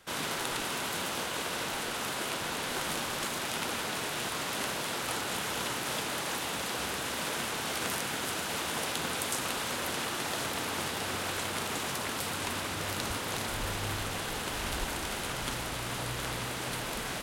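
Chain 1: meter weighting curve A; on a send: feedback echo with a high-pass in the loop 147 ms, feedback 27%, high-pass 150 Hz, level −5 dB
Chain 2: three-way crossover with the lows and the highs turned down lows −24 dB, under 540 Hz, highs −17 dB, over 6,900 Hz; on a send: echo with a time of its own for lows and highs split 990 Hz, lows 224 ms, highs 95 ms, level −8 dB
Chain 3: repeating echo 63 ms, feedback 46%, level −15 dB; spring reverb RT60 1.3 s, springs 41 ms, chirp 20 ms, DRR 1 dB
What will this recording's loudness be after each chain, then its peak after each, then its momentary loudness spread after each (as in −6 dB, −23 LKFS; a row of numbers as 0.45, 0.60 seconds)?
−32.0, −34.0, −31.0 LKFS; −11.0, −15.0, −11.5 dBFS; 2, 2, 2 LU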